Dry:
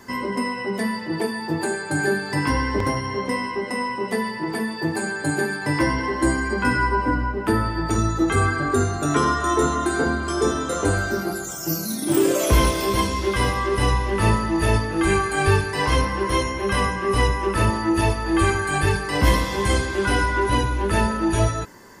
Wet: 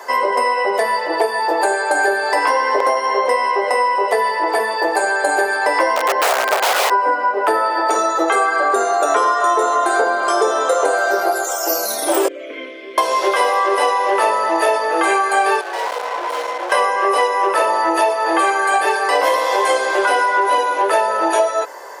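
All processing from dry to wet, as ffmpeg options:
-filter_complex "[0:a]asettb=1/sr,asplit=3[a][b][c];[a]atrim=end=5.964[d];[b]atrim=start=5.96:end=6.9,asetpts=PTS-STARTPTS,afade=t=in:d=0.004:c=qsin,afade=t=out:st=0.936:d=0.004:c=qsin,lowpass=f=3.8k:p=1,bandreject=f=1.2k:w=6.4,aeval=exprs='(mod(7.94*val(0)+1,2)-1)/7.94':c=same[e];[c]atrim=start=6.896[f];[d][e]acrossfade=d=0.004:c1=hsin:c2=qsin[g];[g][f]acrossfade=d=0.004:c1=qsin:c2=hsin,asettb=1/sr,asplit=3[h][i][j];[h]atrim=end=12.284[k];[i]atrim=start=12.28:end=12.98,asetpts=PTS-STARTPTS,afade=t=in:d=0.004:c=qsin,afade=t=out:st=0.696:d=0.004:c=qsin,acrossover=split=2600[l][m];[m]acompressor=threshold=-44dB:ratio=4:attack=1:release=60[n];[l][n]amix=inputs=2:normalize=0,asplit=3[o][p][q];[o]bandpass=f=270:t=q:w=8,volume=0dB[r];[p]bandpass=f=2.29k:t=q:w=8,volume=-6dB[s];[q]bandpass=f=3.01k:t=q:w=8,volume=-9dB[t];[r][s][t]amix=inputs=3:normalize=0[u];[j]atrim=start=12.976[v];[k][u]acrossfade=d=0.004:c1=hsin:c2=qsin[w];[w][v]acrossfade=d=0.004:c1=qsin:c2=hsin,asettb=1/sr,asplit=3[x][y][z];[x]atrim=end=15.614[aa];[y]atrim=start=15.61:end=16.72,asetpts=PTS-STARTPTS,afade=t=in:d=0.004:c=qsin,afade=t=out:st=1.106:d=0.004:c=qsin,highshelf=f=6.5k:g=-10,afreqshift=-37,aeval=exprs='(tanh(44.7*val(0)+0.75)-tanh(0.75))/44.7':c=same[ab];[z]atrim=start=16.716[ac];[aa][ab]acrossfade=d=0.004:c1=hsin:c2=qsin[ad];[ad][ac]acrossfade=d=0.004:c1=qsin:c2=hsin,highpass=f=490:w=0.5412,highpass=f=490:w=1.3066,equalizer=f=630:w=0.81:g=12.5,acompressor=threshold=-20dB:ratio=6,volume=7.5dB"

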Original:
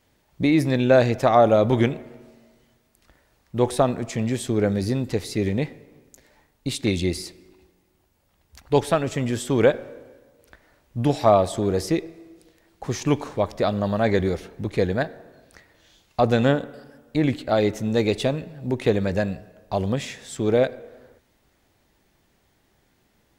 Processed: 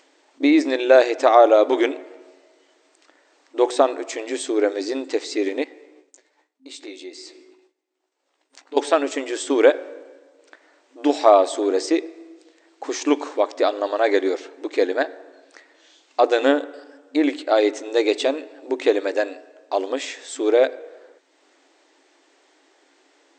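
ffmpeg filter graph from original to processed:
-filter_complex "[0:a]asettb=1/sr,asplit=3[a][b][c];[a]atrim=end=5.644[d];[b]atrim=start=5.64:end=8.77,asetpts=PTS-STARTPTS,afade=t=in:d=0.004:c=qsin,afade=t=out:st=3.126:d=0.004:c=qsin,agate=range=-33dB:threshold=-50dB:ratio=3:release=100:detection=peak,acompressor=threshold=-43dB:ratio=2.5:attack=3.2:release=140:knee=1:detection=peak,asplit=2[e][f];[f]adelay=16,volume=-7dB[g];[e][g]amix=inputs=2:normalize=0,atrim=end_sample=138033[h];[c]atrim=start=8.766[i];[d][h]acrossfade=d=0.004:c1=hsin:c2=qsin[j];[j][i]acrossfade=d=0.004:c1=qsin:c2=hsin,afftfilt=real='re*between(b*sr/4096,260,8600)':imag='im*between(b*sr/4096,260,8600)':win_size=4096:overlap=0.75,acompressor=mode=upward:threshold=-55dB:ratio=2.5,volume=3.5dB"

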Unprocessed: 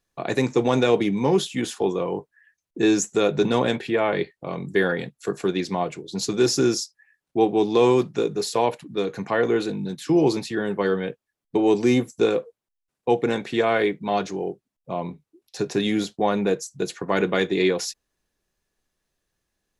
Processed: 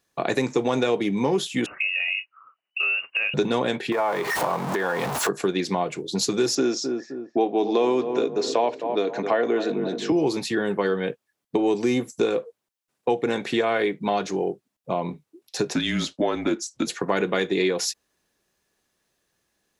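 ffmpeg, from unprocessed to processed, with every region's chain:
-filter_complex "[0:a]asettb=1/sr,asplit=3[a][b][c];[a]atrim=end=1.664[d];[b]atrim=start=1.66:end=3.34,asetpts=PTS-STARTPTS,afade=t=in:d=0.004:c=qsin,afade=t=out:st=1.676:d=0.004:c=qsin,lowpass=f=2.6k:t=q:w=0.5098,lowpass=f=2.6k:t=q:w=0.6013,lowpass=f=2.6k:t=q:w=0.9,lowpass=f=2.6k:t=q:w=2.563,afreqshift=-3000,acompressor=threshold=-28dB:ratio=3:attack=3.2:release=140:knee=1:detection=peak[e];[c]atrim=start=3.336[f];[d][e]acrossfade=d=0.004:c1=hsin:c2=qsin[g];[g][f]acrossfade=d=0.004:c1=qsin:c2=hsin,asettb=1/sr,asplit=3[h][i][j];[h]atrim=end=3.924[k];[i]atrim=start=3.92:end=5.29,asetpts=PTS-STARTPTS,afade=t=in:d=0.004:c=qsin,afade=t=out:st=1.366:d=0.004:c=qsin,aeval=exprs='val(0)+0.5*0.0398*sgn(val(0))':c=same,acompressor=threshold=-30dB:ratio=5:attack=3.2:release=140:knee=1:detection=peak,equalizer=f=920:t=o:w=1.3:g=14.5[l];[j]atrim=start=5.286[m];[k][l]acrossfade=d=0.004:c1=hsin:c2=qsin[n];[n][m]acrossfade=d=0.004:c1=qsin:c2=hsin,asettb=1/sr,asplit=3[o][p][q];[o]atrim=end=6.554[r];[p]atrim=start=6.55:end=10.12,asetpts=PTS-STARTPTS,afade=t=in:d=0.004:c=qsin,afade=t=out:st=3.566:d=0.004:c=qsin,highpass=f=150:w=0.5412,highpass=f=150:w=1.3066,equalizer=f=180:t=q:w=4:g=-10,equalizer=f=250:t=q:w=4:g=4,equalizer=f=650:t=q:w=4:g=8,equalizer=f=4.7k:t=q:w=4:g=-4,lowpass=f=6.2k:w=0.5412,lowpass=f=6.2k:w=1.3066,asplit=2[s][t];[t]adelay=261,lowpass=f=990:p=1,volume=-11dB,asplit=2[u][v];[v]adelay=261,lowpass=f=990:p=1,volume=0.4,asplit=2[w][x];[x]adelay=261,lowpass=f=990:p=1,volume=0.4,asplit=2[y][z];[z]adelay=261,lowpass=f=990:p=1,volume=0.4[aa];[s][u][w][y][aa]amix=inputs=5:normalize=0,atrim=end_sample=157437[ab];[q]atrim=start=10.116[ac];[r][ab]acrossfade=d=0.004:c1=hsin:c2=qsin[ad];[ad][ac]acrossfade=d=0.004:c1=qsin:c2=hsin,asettb=1/sr,asplit=3[ae][af][ag];[ae]atrim=end=15.744[ah];[af]atrim=start=15.74:end=16.87,asetpts=PTS-STARTPTS,afade=t=in:d=0.004:c=qsin,afade=t=out:st=1.126:d=0.004:c=qsin,afreqshift=-130,highpass=190,lowpass=7.7k[ai];[ag]atrim=start=16.866[aj];[ah][ai]acrossfade=d=0.004:c1=hsin:c2=qsin[ak];[ak][aj]acrossfade=d=0.004:c1=qsin:c2=hsin,highpass=f=170:p=1,acompressor=threshold=-28dB:ratio=3,volume=6.5dB"

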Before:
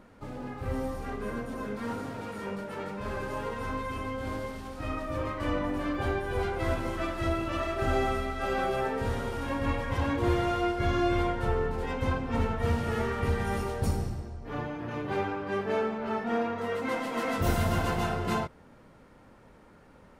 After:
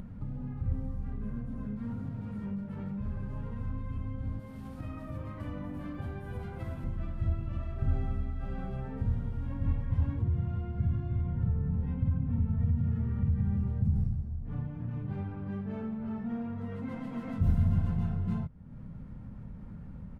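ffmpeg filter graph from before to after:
-filter_complex "[0:a]asettb=1/sr,asplit=3[a][b][c];[a]atrim=end=4.394[d];[b]atrim=start=4.39:end=6.84,asetpts=PTS-STARTPTS,afade=t=in:d=0.004:c=qsin,afade=t=out:st=2.446:d=0.004:c=qsin,highpass=f=300:p=1,equalizer=f=13k:w=0.62:g=10.5[e];[c]atrim=start=6.836[f];[d][e]acrossfade=d=0.004:c1=hsin:c2=qsin[g];[g][f]acrossfade=d=0.004:c1=qsin:c2=hsin,asettb=1/sr,asplit=3[h][i][j];[h]atrim=end=10.214[k];[i]atrim=start=10.21:end=13.96,asetpts=PTS-STARTPTS,afade=t=in:d=0.004:c=qsin,afade=t=out:st=3.746:d=0.004:c=qsin,highpass=83,bass=f=250:g=8,treble=f=4k:g=-6,acompressor=threshold=-26dB:ratio=4:attack=3.2:release=140:knee=1:detection=peak[l];[j]atrim=start=13.956[m];[k][l]acrossfade=d=0.004:c1=hsin:c2=qsin[n];[n][m]acrossfade=d=0.004:c1=qsin:c2=hsin,firequalizer=gain_entry='entry(180,0);entry(340,-21);entry(5700,-30)':delay=0.05:min_phase=1,acompressor=mode=upward:threshold=-34dB:ratio=2.5,volume=3.5dB"

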